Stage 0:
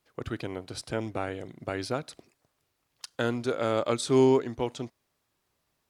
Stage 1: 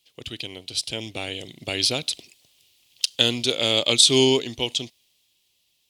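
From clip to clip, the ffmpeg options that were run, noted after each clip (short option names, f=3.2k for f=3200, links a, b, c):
-af "dynaudnorm=f=240:g=11:m=8dB,highshelf=f=2.1k:t=q:w=3:g=13.5,volume=-4.5dB"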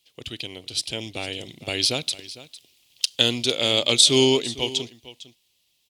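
-af "aecho=1:1:454:0.141"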